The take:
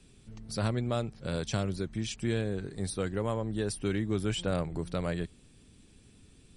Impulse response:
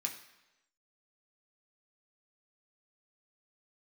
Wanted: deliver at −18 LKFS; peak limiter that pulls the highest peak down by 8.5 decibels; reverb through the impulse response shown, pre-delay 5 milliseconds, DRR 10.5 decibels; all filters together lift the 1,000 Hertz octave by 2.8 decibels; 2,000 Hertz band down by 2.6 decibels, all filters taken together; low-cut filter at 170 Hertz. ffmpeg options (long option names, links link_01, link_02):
-filter_complex "[0:a]highpass=170,equalizer=frequency=1000:width_type=o:gain=5.5,equalizer=frequency=2000:width_type=o:gain=-6,alimiter=level_in=1.5dB:limit=-24dB:level=0:latency=1,volume=-1.5dB,asplit=2[link_01][link_02];[1:a]atrim=start_sample=2205,adelay=5[link_03];[link_02][link_03]afir=irnorm=-1:irlink=0,volume=-11dB[link_04];[link_01][link_04]amix=inputs=2:normalize=0,volume=19dB"